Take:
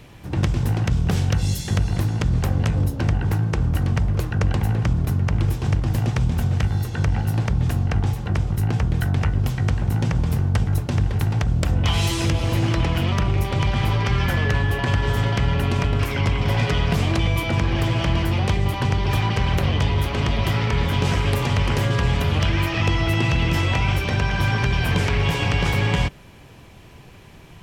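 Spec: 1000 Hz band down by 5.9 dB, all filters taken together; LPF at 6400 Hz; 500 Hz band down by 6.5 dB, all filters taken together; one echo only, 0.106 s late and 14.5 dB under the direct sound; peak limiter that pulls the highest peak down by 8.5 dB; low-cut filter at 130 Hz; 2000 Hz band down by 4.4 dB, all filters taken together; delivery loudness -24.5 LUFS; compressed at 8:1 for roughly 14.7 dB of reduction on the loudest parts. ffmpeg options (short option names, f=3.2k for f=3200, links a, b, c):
-af "highpass=130,lowpass=6.4k,equalizer=f=500:t=o:g=-7.5,equalizer=f=1k:t=o:g=-4,equalizer=f=2k:t=o:g=-4,acompressor=threshold=-37dB:ratio=8,alimiter=level_in=9dB:limit=-24dB:level=0:latency=1,volume=-9dB,aecho=1:1:106:0.188,volume=18dB"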